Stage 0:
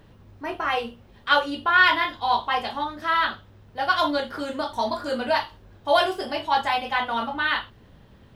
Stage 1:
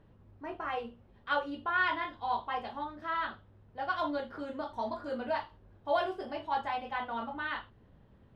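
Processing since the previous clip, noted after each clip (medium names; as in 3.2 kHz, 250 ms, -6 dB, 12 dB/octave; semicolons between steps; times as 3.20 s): low-pass 1.3 kHz 6 dB/octave; trim -8.5 dB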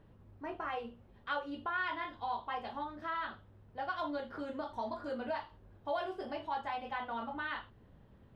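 compression 2:1, threshold -37 dBFS, peak gain reduction 7.5 dB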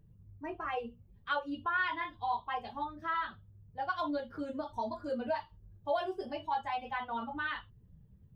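expander on every frequency bin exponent 1.5; trim +5.5 dB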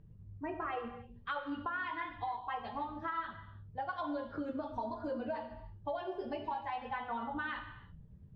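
Bessel low-pass 2.9 kHz, order 2; compression, threshold -39 dBFS, peak gain reduction 11.5 dB; reverberation, pre-delay 25 ms, DRR 8 dB; trim +3.5 dB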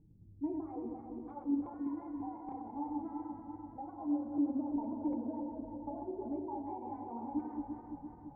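backward echo that repeats 170 ms, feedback 77%, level -4.5 dB; integer overflow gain 25.5 dB; cascade formant filter u; trim +7.5 dB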